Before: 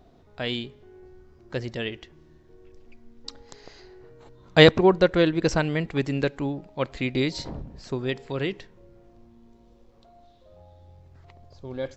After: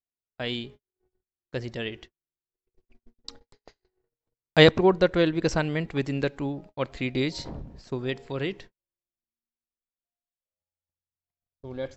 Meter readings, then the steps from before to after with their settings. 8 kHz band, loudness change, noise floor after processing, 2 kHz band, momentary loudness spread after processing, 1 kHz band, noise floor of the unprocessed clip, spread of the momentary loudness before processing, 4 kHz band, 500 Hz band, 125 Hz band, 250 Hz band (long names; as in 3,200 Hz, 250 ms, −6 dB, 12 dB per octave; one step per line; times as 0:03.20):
can't be measured, −2.0 dB, below −85 dBFS, −2.0 dB, 24 LU, −2.0 dB, −56 dBFS, 24 LU, −2.0 dB, −2.0 dB, −2.0 dB, −2.0 dB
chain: noise gate −43 dBFS, range −49 dB
level −2 dB